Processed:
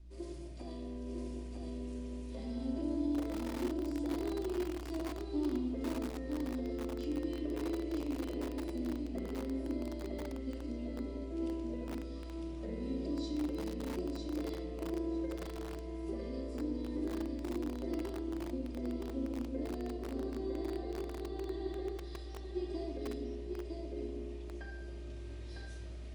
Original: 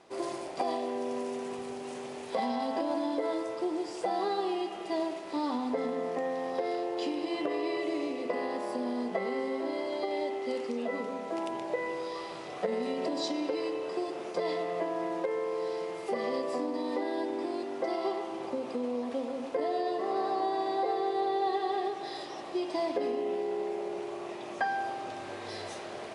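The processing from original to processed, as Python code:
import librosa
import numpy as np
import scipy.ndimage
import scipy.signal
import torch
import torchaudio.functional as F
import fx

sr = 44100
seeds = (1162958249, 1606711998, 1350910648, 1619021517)

y = fx.add_hum(x, sr, base_hz=60, snr_db=21)
y = fx.tone_stack(y, sr, knobs='10-0-1')
y = fx.echo_feedback(y, sr, ms=953, feedback_pct=20, wet_db=-3.5)
y = fx.room_shoebox(y, sr, seeds[0], volume_m3=2500.0, walls='furnished', distance_m=2.7)
y = fx.dynamic_eq(y, sr, hz=380.0, q=0.79, threshold_db=-56.0, ratio=4.0, max_db=7)
y = y + 10.0 ** (-21.0 / 20.0) * np.pad(y, (int(117 * sr / 1000.0), 0))[:len(y)]
y = fx.echo_crushed(y, sr, ms=489, feedback_pct=55, bits=7, wet_db=-5.5)
y = y * librosa.db_to_amplitude(6.0)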